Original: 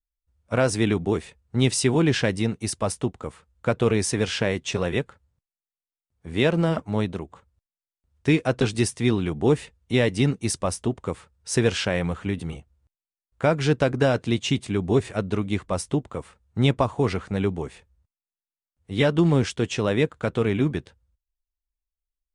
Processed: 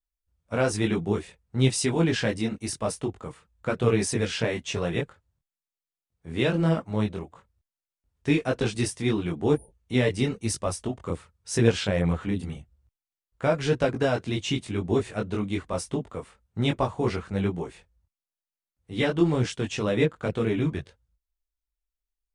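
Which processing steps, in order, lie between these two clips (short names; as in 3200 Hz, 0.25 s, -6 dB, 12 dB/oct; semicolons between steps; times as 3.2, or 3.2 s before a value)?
spectral repair 9.57–9.81, 920–8900 Hz after; chorus voices 4, 0.93 Hz, delay 21 ms, depth 3.5 ms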